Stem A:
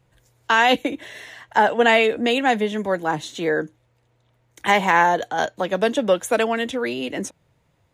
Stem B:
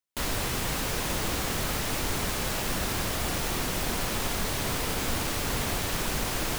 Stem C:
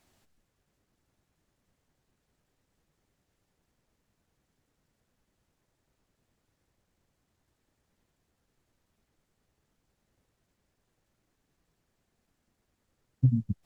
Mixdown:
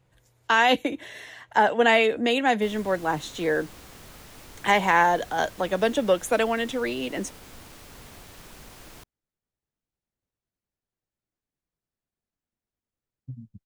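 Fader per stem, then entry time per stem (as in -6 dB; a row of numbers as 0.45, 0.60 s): -3.0, -17.0, -16.0 dB; 0.00, 2.45, 0.05 s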